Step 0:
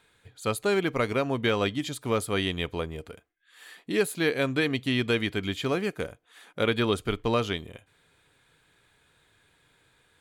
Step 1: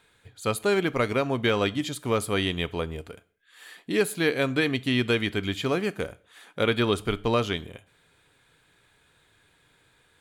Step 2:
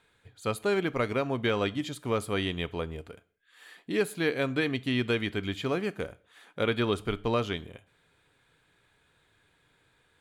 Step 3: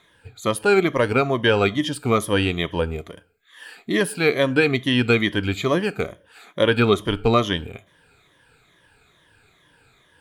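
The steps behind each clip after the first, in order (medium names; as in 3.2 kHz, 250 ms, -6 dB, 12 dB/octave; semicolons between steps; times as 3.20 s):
reverberation RT60 0.50 s, pre-delay 7 ms, DRR 18 dB; trim +1.5 dB
treble shelf 4.6 kHz -5.5 dB; trim -3.5 dB
drifting ripple filter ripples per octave 1.2, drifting -2.3 Hz, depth 12 dB; trim +8 dB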